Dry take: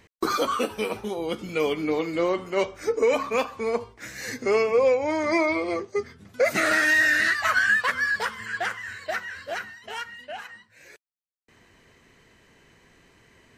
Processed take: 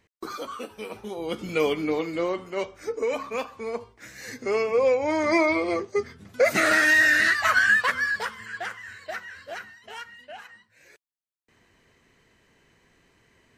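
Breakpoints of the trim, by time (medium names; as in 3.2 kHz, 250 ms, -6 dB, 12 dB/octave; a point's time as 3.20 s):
0.73 s -10.5 dB
1.51 s +2 dB
2.67 s -5.5 dB
4.23 s -5.5 dB
5.21 s +1.5 dB
7.79 s +1.5 dB
8.51 s -5 dB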